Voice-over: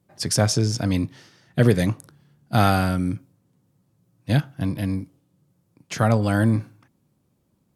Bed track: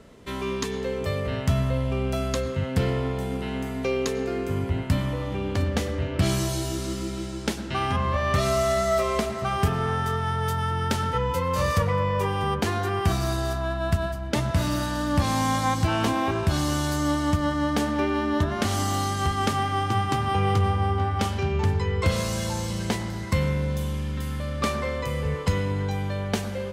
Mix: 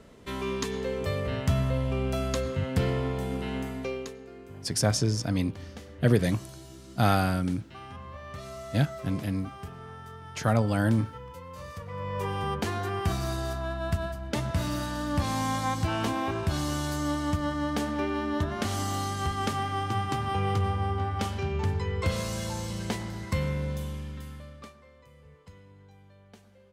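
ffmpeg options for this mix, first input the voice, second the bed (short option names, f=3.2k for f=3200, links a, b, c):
-filter_complex "[0:a]adelay=4450,volume=-5dB[a];[1:a]volume=10.5dB,afade=t=out:st=3.58:d=0.6:silence=0.16788,afade=t=in:st=11.85:d=0.46:silence=0.223872,afade=t=out:st=23.69:d=1.05:silence=0.0794328[b];[a][b]amix=inputs=2:normalize=0"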